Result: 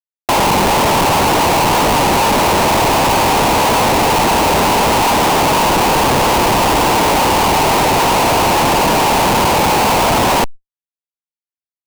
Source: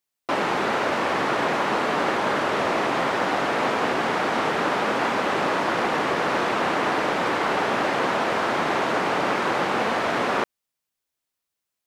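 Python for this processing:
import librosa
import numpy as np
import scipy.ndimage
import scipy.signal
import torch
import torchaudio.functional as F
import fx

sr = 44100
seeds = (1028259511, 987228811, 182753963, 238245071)

y = fx.lowpass_res(x, sr, hz=920.0, q=4.7)
y = fx.low_shelf(y, sr, hz=160.0, db=9.0)
y = fx.schmitt(y, sr, flips_db=-23.0)
y = fx.env_flatten(y, sr, amount_pct=70)
y = y * 10.0 ** (4.5 / 20.0)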